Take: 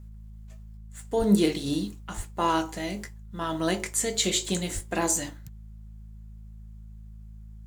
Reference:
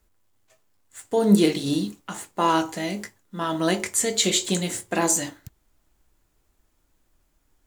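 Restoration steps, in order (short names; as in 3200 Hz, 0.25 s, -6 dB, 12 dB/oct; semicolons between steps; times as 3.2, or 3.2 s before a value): de-hum 53.5 Hz, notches 4; 0.77 gain correction +4 dB; 1.18–1.3 HPF 140 Hz 24 dB/oct; 2.16–2.28 HPF 140 Hz 24 dB/oct; 4.74–4.86 HPF 140 Hz 24 dB/oct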